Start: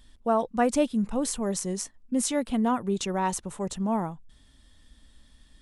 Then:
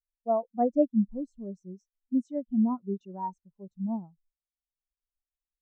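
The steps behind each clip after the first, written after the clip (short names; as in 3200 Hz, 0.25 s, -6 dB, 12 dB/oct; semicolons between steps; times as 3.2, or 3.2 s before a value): Chebyshev low-pass 6100 Hz, order 2; spectral expander 2.5:1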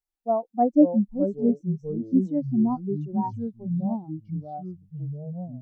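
small resonant body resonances 320/770 Hz, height 12 dB, ringing for 40 ms; echoes that change speed 0.459 s, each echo -4 st, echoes 3, each echo -6 dB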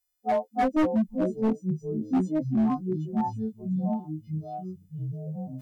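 frequency quantiser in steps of 3 st; hard clip -19.5 dBFS, distortion -10 dB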